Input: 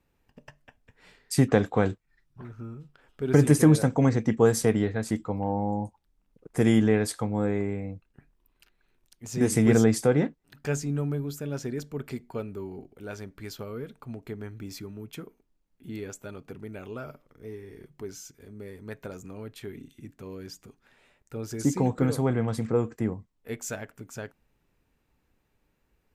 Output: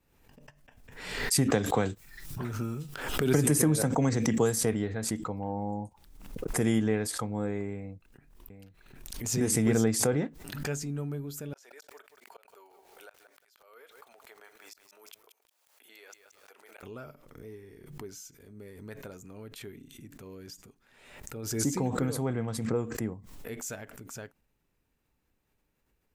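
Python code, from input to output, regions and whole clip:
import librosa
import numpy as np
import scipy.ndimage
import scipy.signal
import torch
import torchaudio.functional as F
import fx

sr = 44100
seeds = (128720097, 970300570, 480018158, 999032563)

y = fx.chain(x, sr, fx.high_shelf(hz=5800.0, db=7.5),
    fx.band_squash(depth_pct=70), at=(1.5, 4.59))
y = fx.chain(y, sr, fx.echo_single(ms=750, db=-10.5),
    fx.pre_swell(db_per_s=92.0), at=(7.75, 10.07))
y = fx.chain(y, sr, fx.highpass(hz=610.0, slope=24),
    fx.gate_flip(shuts_db=-33.0, range_db=-32),
    fx.echo_crushed(ms=177, feedback_pct=35, bits=10, wet_db=-8.0), at=(11.53, 16.83))
y = fx.high_shelf(y, sr, hz=5700.0, db=6.0)
y = fx.pre_swell(y, sr, db_per_s=55.0)
y = y * librosa.db_to_amplitude(-6.0)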